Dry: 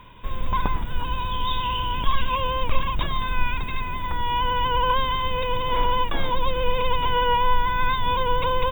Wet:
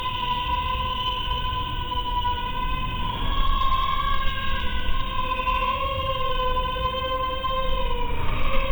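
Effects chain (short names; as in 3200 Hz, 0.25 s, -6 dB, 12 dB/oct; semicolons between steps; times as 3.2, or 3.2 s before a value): Paulstretch 7.7×, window 0.10 s, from 1.62; added harmonics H 2 -16 dB, 8 -31 dB, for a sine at -4.5 dBFS; de-hum 45.09 Hz, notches 36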